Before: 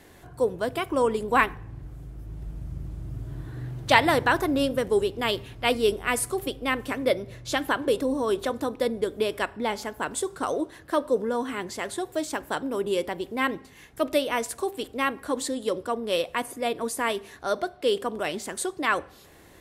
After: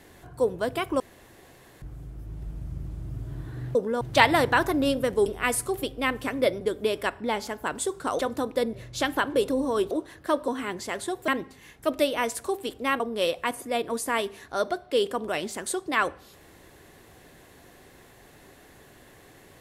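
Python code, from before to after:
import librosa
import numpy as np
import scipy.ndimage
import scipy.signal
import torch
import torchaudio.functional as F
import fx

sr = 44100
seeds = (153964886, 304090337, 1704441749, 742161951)

y = fx.edit(x, sr, fx.room_tone_fill(start_s=1.0, length_s=0.82),
    fx.cut(start_s=5.0, length_s=0.9),
    fx.swap(start_s=7.25, length_s=1.18, other_s=8.97, other_length_s=1.58),
    fx.move(start_s=11.12, length_s=0.26, to_s=3.75),
    fx.cut(start_s=12.18, length_s=1.24),
    fx.cut(start_s=15.14, length_s=0.77), tone=tone)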